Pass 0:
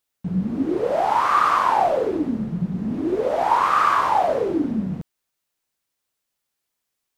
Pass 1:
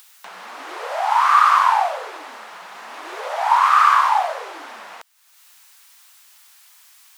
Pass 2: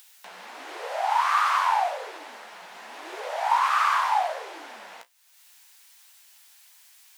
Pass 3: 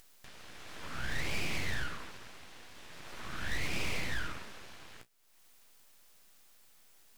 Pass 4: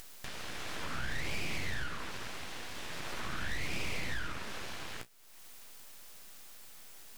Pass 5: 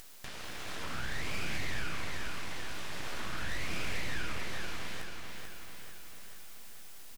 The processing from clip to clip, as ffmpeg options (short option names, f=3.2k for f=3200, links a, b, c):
-filter_complex "[0:a]highpass=f=880:w=0.5412,highpass=f=880:w=1.3066,asplit=2[a][b];[b]acompressor=mode=upward:threshold=-25dB:ratio=2.5,volume=0dB[c];[a][c]amix=inputs=2:normalize=0,volume=-1dB"
-af "equalizer=f=1.2k:w=2.8:g=-6.5,flanger=delay=8.9:depth=9:regen=-43:speed=1.3:shape=triangular"
-af "aeval=exprs='abs(val(0))':c=same,aeval=exprs='(tanh(5.62*val(0)+0.55)-tanh(0.55))/5.62':c=same,volume=-3dB"
-af "acompressor=threshold=-45dB:ratio=3,volume=10dB"
-af "aecho=1:1:439|878|1317|1756|2195|2634|3073:0.596|0.328|0.18|0.0991|0.0545|0.03|0.0165,volume=-1dB"